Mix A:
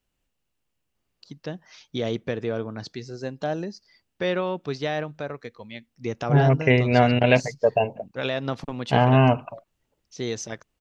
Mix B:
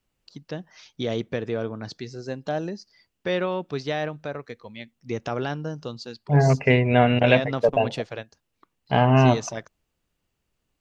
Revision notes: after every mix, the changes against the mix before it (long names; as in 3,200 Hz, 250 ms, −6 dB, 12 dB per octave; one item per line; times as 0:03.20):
first voice: entry −0.95 s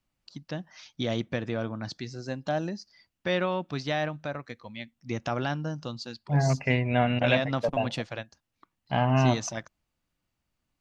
second voice −5.5 dB
master: add parametric band 430 Hz −11 dB 0.35 octaves